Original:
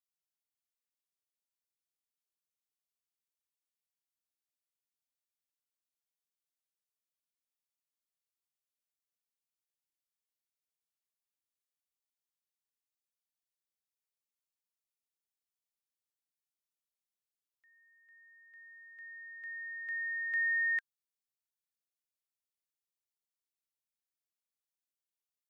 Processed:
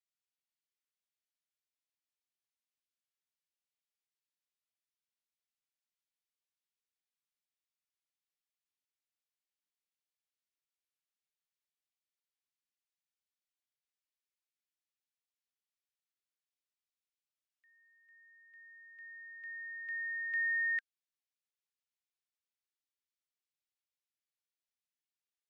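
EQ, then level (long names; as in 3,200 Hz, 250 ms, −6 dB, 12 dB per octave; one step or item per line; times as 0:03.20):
high-pass filter 1,500 Hz 12 dB per octave
resonant band-pass 2,300 Hz, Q 0.54
0.0 dB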